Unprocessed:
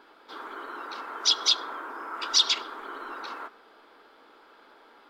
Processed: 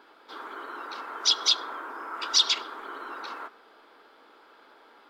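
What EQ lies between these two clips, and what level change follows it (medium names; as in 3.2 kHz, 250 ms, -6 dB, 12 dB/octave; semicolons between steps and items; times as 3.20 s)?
bass shelf 150 Hz -5.5 dB; 0.0 dB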